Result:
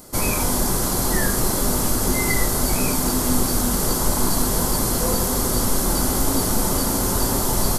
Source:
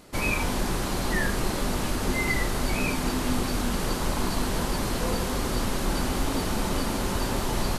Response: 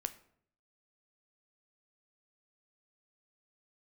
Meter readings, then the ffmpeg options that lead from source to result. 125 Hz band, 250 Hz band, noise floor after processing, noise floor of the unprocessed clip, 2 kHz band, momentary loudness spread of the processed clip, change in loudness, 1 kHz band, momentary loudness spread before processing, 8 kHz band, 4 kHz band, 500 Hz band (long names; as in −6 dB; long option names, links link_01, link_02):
+5.0 dB, +5.0 dB, −22 dBFS, −29 dBFS, +0.5 dB, 1 LU, +7.5 dB, +4.5 dB, 2 LU, +13.5 dB, +5.0 dB, +5.5 dB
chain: -filter_complex "[0:a]aemphasis=mode=production:type=50kf,asplit=2[link_01][link_02];[link_02]asuperstop=centerf=2600:order=12:qfactor=1.9[link_03];[1:a]atrim=start_sample=2205,asetrate=52920,aresample=44100[link_04];[link_03][link_04]afir=irnorm=-1:irlink=0,volume=9.5dB[link_05];[link_01][link_05]amix=inputs=2:normalize=0,volume=-5dB"